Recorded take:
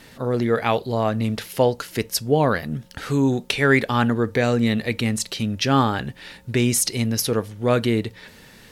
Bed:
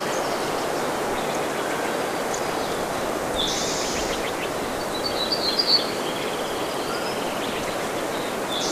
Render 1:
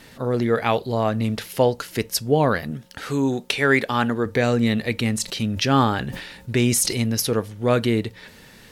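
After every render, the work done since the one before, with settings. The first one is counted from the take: 2.71–4.26 low shelf 150 Hz -9 dB; 5.22–7.02 sustainer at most 59 dB/s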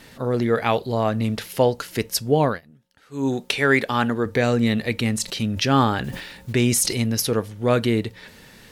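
2.44–3.28 dip -21.5 dB, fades 0.17 s; 6.04–6.53 block floating point 5-bit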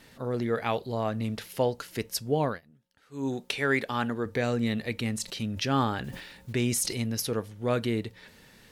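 gain -8 dB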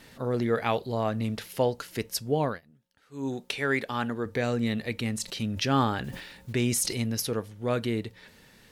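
vocal rider 2 s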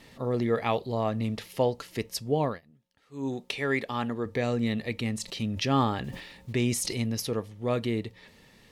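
high shelf 8200 Hz -7.5 dB; notch 1500 Hz, Q 5.4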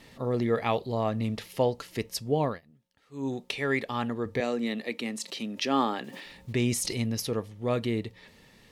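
4.4–6.26 HPF 220 Hz 24 dB/oct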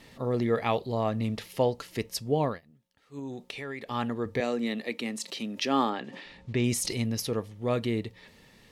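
3.19–3.91 compressor 4:1, threshold -35 dBFS; 5.9–6.64 air absorption 90 m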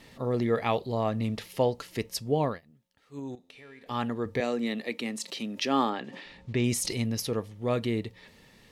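3.35–3.86 resonator 87 Hz, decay 1.8 s, mix 80%

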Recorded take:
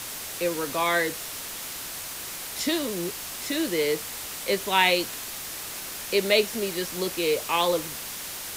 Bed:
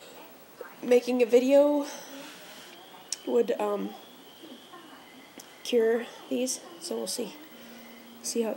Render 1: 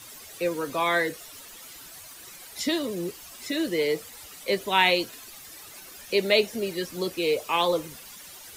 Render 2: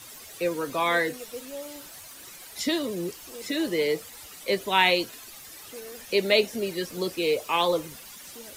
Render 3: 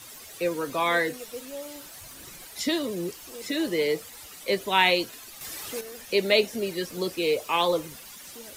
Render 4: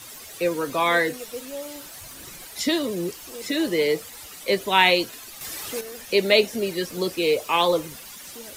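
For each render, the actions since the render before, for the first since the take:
denoiser 13 dB, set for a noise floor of -36 dBFS
add bed -18.5 dB
2.01–2.47 low shelf 280 Hz +10.5 dB; 5.41–5.81 gain +7 dB
gain +3.5 dB

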